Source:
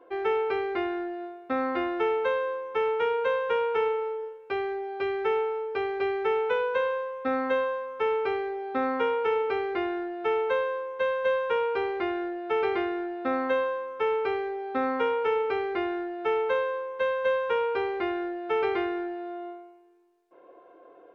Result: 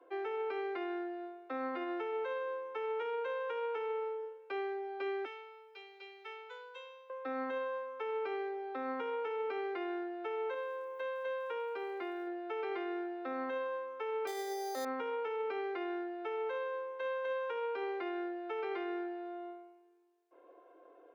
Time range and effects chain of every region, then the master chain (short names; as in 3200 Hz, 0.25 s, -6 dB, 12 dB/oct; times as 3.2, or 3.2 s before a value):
5.25–7.1 differentiator + comb 2.2 ms, depth 76%
10.54–12.27 compressor 2:1, threshold -32 dBFS + sample gate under -56.5 dBFS
14.27–14.85 small resonant body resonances 620/1900 Hz, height 15 dB, ringing for 25 ms + careless resampling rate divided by 8×, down filtered, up hold
whole clip: steep high-pass 250 Hz 96 dB/oct; limiter -23.5 dBFS; gain -7 dB